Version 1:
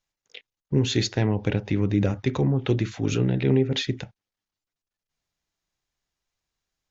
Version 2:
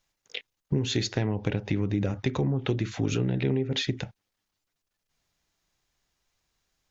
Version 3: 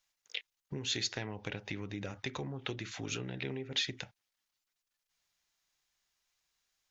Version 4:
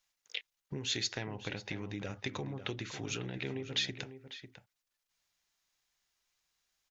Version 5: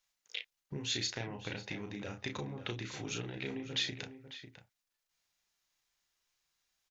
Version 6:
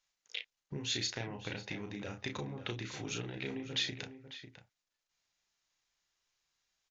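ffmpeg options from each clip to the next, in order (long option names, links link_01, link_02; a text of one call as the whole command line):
ffmpeg -i in.wav -af "acompressor=threshold=-32dB:ratio=4,volume=7dB" out.wav
ffmpeg -i in.wav -af "tiltshelf=frequency=690:gain=-7,volume=-9dB" out.wav
ffmpeg -i in.wav -filter_complex "[0:a]asplit=2[link_01][link_02];[link_02]adelay=548.1,volume=-10dB,highshelf=frequency=4000:gain=-12.3[link_03];[link_01][link_03]amix=inputs=2:normalize=0" out.wav
ffmpeg -i in.wav -filter_complex "[0:a]asplit=2[link_01][link_02];[link_02]adelay=34,volume=-5dB[link_03];[link_01][link_03]amix=inputs=2:normalize=0,volume=-2dB" out.wav
ffmpeg -i in.wav -af "aresample=16000,aresample=44100" out.wav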